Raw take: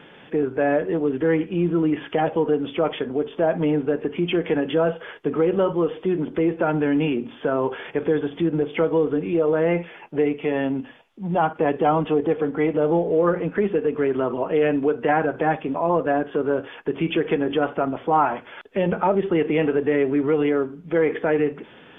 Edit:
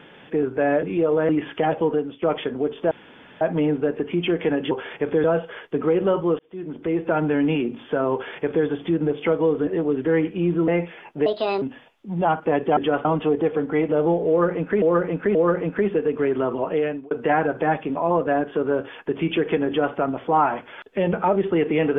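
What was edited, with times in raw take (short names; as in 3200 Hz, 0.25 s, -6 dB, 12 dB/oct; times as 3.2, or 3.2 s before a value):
0.83–1.84 swap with 9.19–9.65
2.45–2.77 fade out, to -18.5 dB
3.46 insert room tone 0.50 s
5.91–6.62 fade in
7.65–8.18 copy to 4.76
10.23–10.75 speed 145%
13.14–13.67 loop, 3 plays
14.48–14.9 fade out
17.46–17.74 copy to 11.9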